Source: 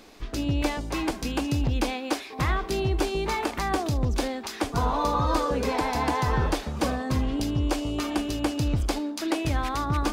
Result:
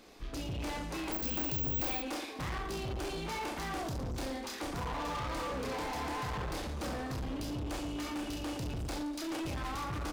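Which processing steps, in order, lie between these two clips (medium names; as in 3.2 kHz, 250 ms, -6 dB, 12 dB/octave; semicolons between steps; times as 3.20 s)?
reverse bouncing-ball echo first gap 30 ms, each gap 1.25×, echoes 5; overload inside the chain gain 27.5 dB; 1.12–2.02 s: careless resampling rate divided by 2×, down none, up zero stuff; trim -7.5 dB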